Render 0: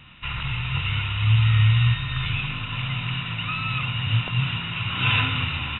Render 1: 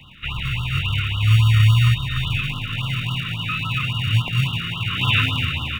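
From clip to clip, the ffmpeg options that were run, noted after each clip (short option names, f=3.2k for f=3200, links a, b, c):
-filter_complex "[0:a]acrossover=split=110|610|1700[a][b][c][d];[b]acrusher=samples=39:mix=1:aa=0.000001[e];[a][e][c][d]amix=inputs=4:normalize=0,afftfilt=real='re*(1-between(b*sr/1024,720*pow(2000/720,0.5+0.5*sin(2*PI*3.6*pts/sr))/1.41,720*pow(2000/720,0.5+0.5*sin(2*PI*3.6*pts/sr))*1.41))':imag='im*(1-between(b*sr/1024,720*pow(2000/720,0.5+0.5*sin(2*PI*3.6*pts/sr))/1.41,720*pow(2000/720,0.5+0.5*sin(2*PI*3.6*pts/sr))*1.41))':win_size=1024:overlap=0.75,volume=3.5dB"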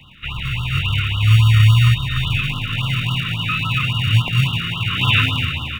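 -af "dynaudnorm=f=180:g=7:m=4dB"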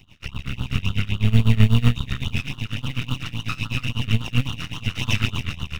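-af "equalizer=f=82:w=1.1:g=9,aeval=exprs='max(val(0),0)':c=same,tremolo=f=8:d=0.9,volume=-2dB"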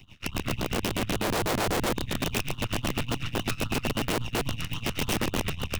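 -filter_complex "[0:a]acrossover=split=130[a][b];[b]acompressor=threshold=-31dB:ratio=16[c];[a][c]amix=inputs=2:normalize=0,aeval=exprs='(mod(11.2*val(0)+1,2)-1)/11.2':c=same"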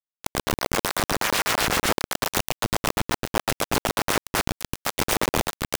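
-af "acrusher=bits=3:mix=0:aa=0.000001,volume=2dB"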